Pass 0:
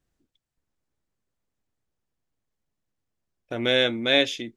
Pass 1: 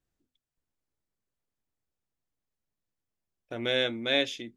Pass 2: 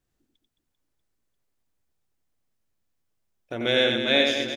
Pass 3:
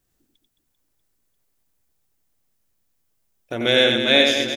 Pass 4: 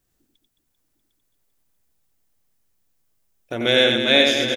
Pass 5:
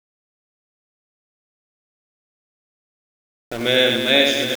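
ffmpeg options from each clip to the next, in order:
ffmpeg -i in.wav -af "bandreject=frequency=50:width_type=h:width=6,bandreject=frequency=100:width_type=h:width=6,bandreject=frequency=150:width_type=h:width=6,bandreject=frequency=200:width_type=h:width=6,bandreject=frequency=250:width_type=h:width=6,volume=-6dB" out.wav
ffmpeg -i in.wav -af "aecho=1:1:90|216|392.4|639.4|985.1:0.631|0.398|0.251|0.158|0.1,volume=4.5dB" out.wav
ffmpeg -i in.wav -af "highshelf=frequency=7500:gain=9.5,volume=4.5dB" out.wav
ffmpeg -i in.wav -af "aecho=1:1:753:0.355" out.wav
ffmpeg -i in.wav -af "aeval=exprs='val(0)*gte(abs(val(0)),0.0376)':channel_layout=same" out.wav

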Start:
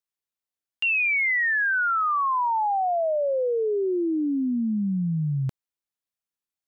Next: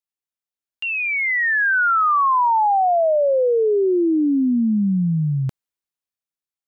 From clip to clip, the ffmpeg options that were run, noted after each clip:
ffmpeg -i in.wav -af "dynaudnorm=framelen=210:gausssize=13:maxgain=11dB,volume=-4dB" out.wav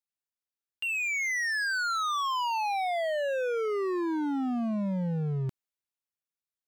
ffmpeg -i in.wav -af "volume=23dB,asoftclip=hard,volume=-23dB,volume=-5.5dB" out.wav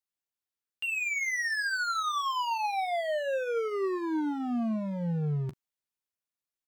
ffmpeg -i in.wav -af "aecho=1:1:13|41:0.316|0.141,volume=-1.5dB" out.wav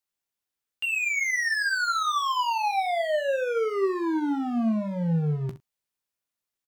ffmpeg -i in.wav -af "aecho=1:1:18|66:0.282|0.224,volume=4dB" out.wav

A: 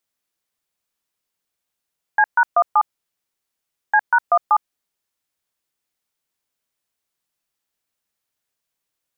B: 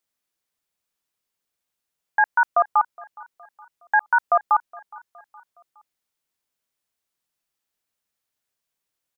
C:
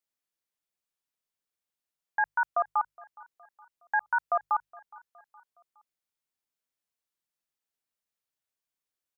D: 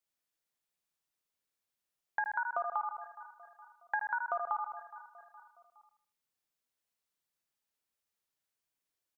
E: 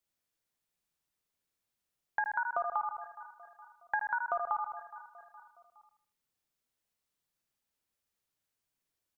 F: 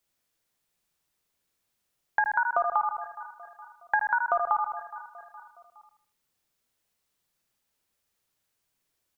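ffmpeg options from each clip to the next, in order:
ffmpeg -i in.wav -af "aecho=1:1:416|832|1248:0.0708|0.0326|0.015,volume=-2dB" out.wav
ffmpeg -i in.wav -af "bandreject=frequency=50:width_type=h:width=6,bandreject=frequency=100:width_type=h:width=6,bandreject=frequency=150:width_type=h:width=6,volume=-8.5dB" out.wav
ffmpeg -i in.wav -filter_complex "[0:a]asplit=2[link_01][link_02];[link_02]aecho=0:1:77|154|231|308:0.531|0.191|0.0688|0.0248[link_03];[link_01][link_03]amix=inputs=2:normalize=0,acompressor=threshold=-31dB:ratio=6" out.wav
ffmpeg -i in.wav -af "lowshelf=frequency=250:gain=7,volume=1dB" out.wav
ffmpeg -i in.wav -af "bandreject=frequency=50:width_type=h:width=6,bandreject=frequency=100:width_type=h:width=6,bandreject=frequency=150:width_type=h:width=6,bandreject=frequency=200:width_type=h:width=6,bandreject=frequency=250:width_type=h:width=6,bandreject=frequency=300:width_type=h:width=6,volume=7.5dB" out.wav

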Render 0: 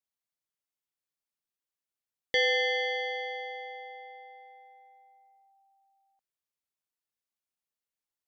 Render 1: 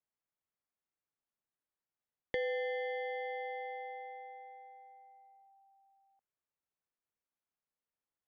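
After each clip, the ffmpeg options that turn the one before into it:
ffmpeg -i in.wav -filter_complex "[0:a]lowpass=1800,acrossover=split=410[link_01][link_02];[link_02]acompressor=threshold=-39dB:ratio=6[link_03];[link_01][link_03]amix=inputs=2:normalize=0,volume=1dB" out.wav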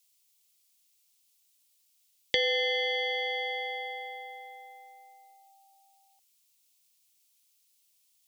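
ffmpeg -i in.wav -af "aexciter=amount=10.1:drive=4.7:freq=2400,volume=4dB" out.wav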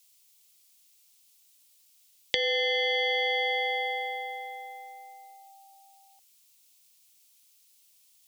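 ffmpeg -i in.wav -af "acompressor=threshold=-31dB:ratio=10,volume=7dB" out.wav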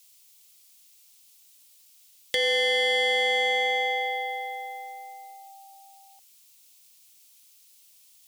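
ffmpeg -i in.wav -af "asoftclip=type=tanh:threshold=-24dB,volume=5.5dB" out.wav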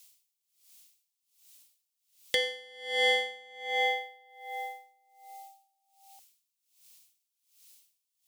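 ffmpeg -i in.wav -af "aeval=exprs='val(0)*pow(10,-28*(0.5-0.5*cos(2*PI*1.3*n/s))/20)':channel_layout=same" out.wav

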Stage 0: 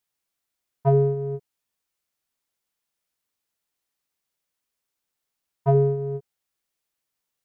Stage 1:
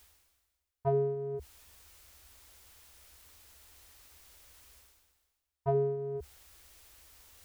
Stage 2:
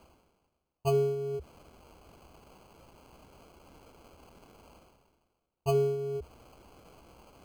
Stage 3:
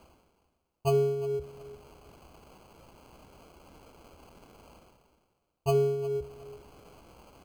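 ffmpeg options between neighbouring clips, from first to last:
ffmpeg -i in.wav -af "lowshelf=frequency=100:width_type=q:width=3:gain=12,areverse,acompressor=mode=upward:threshold=-25dB:ratio=2.5,areverse,volume=-7.5dB" out.wav
ffmpeg -i in.wav -filter_complex "[0:a]acrossover=split=720[link_01][link_02];[link_01]crystalizer=i=9:c=0[link_03];[link_02]acrusher=samples=24:mix=1:aa=0.000001[link_04];[link_03][link_04]amix=inputs=2:normalize=0,volume=2dB" out.wav
ffmpeg -i in.wav -af "aecho=1:1:363|726:0.141|0.0353,volume=1.5dB" out.wav

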